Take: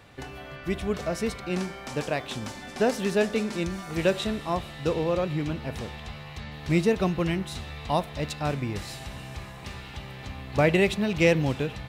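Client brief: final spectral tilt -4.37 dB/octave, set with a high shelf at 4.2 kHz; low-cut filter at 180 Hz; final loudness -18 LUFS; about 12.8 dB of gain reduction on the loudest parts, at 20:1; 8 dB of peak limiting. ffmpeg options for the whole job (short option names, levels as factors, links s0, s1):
-af "highpass=180,highshelf=f=4200:g=-6,acompressor=threshold=0.0316:ratio=20,volume=10.6,alimiter=limit=0.501:level=0:latency=1"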